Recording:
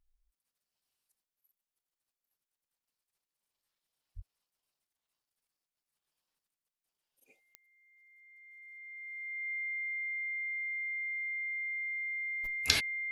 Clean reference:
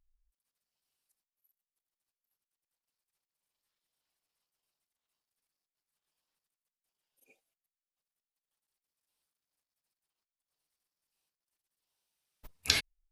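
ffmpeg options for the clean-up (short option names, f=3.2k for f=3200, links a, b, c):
-filter_complex "[0:a]adeclick=t=4,bandreject=f=2.1k:w=30,asplit=3[a][b][c];[a]afade=t=out:st=4.15:d=0.02[d];[b]highpass=f=140:w=0.5412,highpass=f=140:w=1.3066,afade=t=in:st=4.15:d=0.02,afade=t=out:st=4.27:d=0.02[e];[c]afade=t=in:st=4.27:d=0.02[f];[d][e][f]amix=inputs=3:normalize=0"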